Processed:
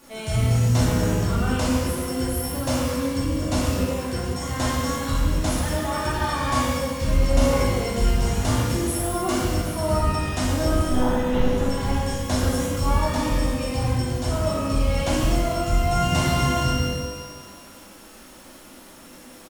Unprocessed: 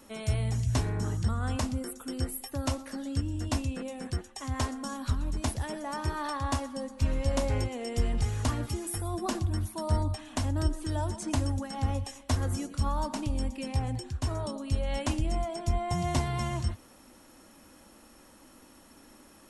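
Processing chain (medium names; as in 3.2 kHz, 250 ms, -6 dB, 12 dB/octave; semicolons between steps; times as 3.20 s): 10.88–11.50 s: monotone LPC vocoder at 8 kHz 250 Hz; on a send: feedback delay 153 ms, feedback 45%, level -14.5 dB; on the sum: crackle 430 per s -45 dBFS; pitch-shifted reverb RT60 1.3 s, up +12 st, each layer -8 dB, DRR -8 dB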